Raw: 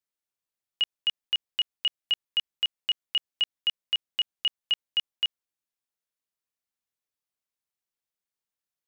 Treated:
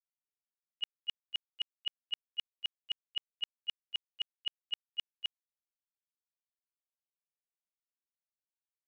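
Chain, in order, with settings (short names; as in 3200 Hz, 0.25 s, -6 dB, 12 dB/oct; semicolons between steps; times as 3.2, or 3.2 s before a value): gate -21 dBFS, range -38 dB; gain +5.5 dB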